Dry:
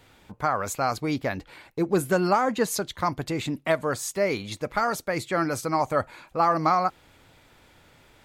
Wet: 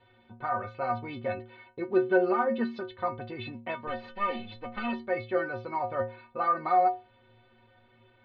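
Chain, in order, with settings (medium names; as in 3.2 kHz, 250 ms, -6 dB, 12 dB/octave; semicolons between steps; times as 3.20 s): 3.87–4.93 s: comb filter that takes the minimum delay 3.9 ms; steep low-pass 3.8 kHz 48 dB/octave; peaking EQ 440 Hz +5 dB 2.2 oct; inharmonic resonator 110 Hz, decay 0.49 s, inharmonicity 0.03; trim +5 dB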